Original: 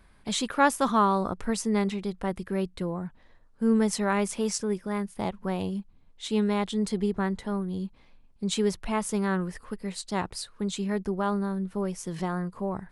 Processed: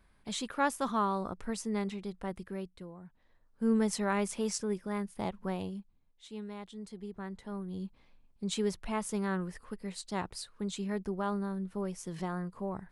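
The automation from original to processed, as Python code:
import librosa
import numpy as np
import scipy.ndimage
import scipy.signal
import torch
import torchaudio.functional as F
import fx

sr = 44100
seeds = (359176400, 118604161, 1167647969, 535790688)

y = fx.gain(x, sr, db=fx.line((2.42, -8.0), (2.95, -17.0), (3.65, -5.0), (5.49, -5.0), (6.28, -17.0), (6.98, -17.0), (7.85, -6.0)))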